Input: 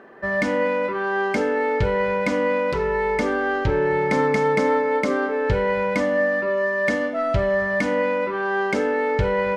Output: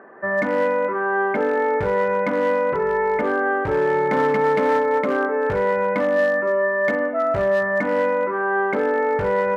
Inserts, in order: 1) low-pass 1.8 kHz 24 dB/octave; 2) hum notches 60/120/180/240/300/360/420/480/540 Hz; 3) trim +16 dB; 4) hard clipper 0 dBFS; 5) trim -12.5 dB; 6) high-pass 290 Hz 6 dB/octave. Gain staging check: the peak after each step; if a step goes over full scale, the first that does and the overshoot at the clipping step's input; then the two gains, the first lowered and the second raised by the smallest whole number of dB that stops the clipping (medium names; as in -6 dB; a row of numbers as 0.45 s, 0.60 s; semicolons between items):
-8.5 dBFS, -10.0 dBFS, +6.0 dBFS, 0.0 dBFS, -12.5 dBFS, -10.0 dBFS; step 3, 6.0 dB; step 3 +10 dB, step 5 -6.5 dB